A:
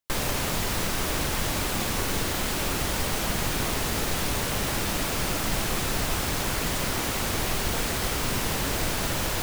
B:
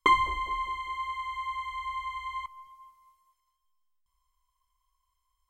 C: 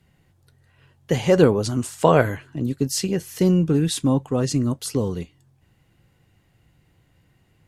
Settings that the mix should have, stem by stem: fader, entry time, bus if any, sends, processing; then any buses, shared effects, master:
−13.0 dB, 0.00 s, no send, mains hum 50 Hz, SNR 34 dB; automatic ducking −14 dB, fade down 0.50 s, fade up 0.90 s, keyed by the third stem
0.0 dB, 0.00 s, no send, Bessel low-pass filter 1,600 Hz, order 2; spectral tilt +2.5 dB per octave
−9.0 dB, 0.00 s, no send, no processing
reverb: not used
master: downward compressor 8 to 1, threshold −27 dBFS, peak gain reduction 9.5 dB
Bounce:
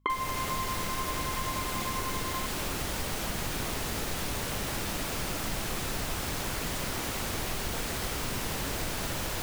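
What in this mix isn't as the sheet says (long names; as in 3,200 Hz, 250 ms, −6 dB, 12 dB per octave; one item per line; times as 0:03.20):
stem A −13.0 dB → −5.0 dB
stem C: muted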